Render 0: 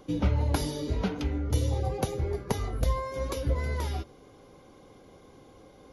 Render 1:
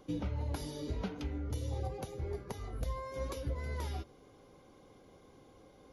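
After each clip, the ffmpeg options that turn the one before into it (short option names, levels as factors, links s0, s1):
-af "alimiter=limit=0.0891:level=0:latency=1:release=381,volume=0.501"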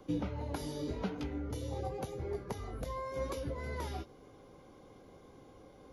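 -filter_complex "[0:a]acrossover=split=140|670|2100[s0][s1][s2][s3];[s0]acompressor=threshold=0.00562:ratio=6[s4];[s3]flanger=delay=15.5:depth=6.3:speed=0.92[s5];[s4][s1][s2][s5]amix=inputs=4:normalize=0,volume=1.41"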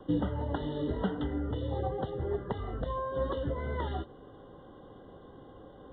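-af "aresample=8000,aresample=44100,asuperstop=centerf=2400:order=20:qfactor=2.8,volume=1.88"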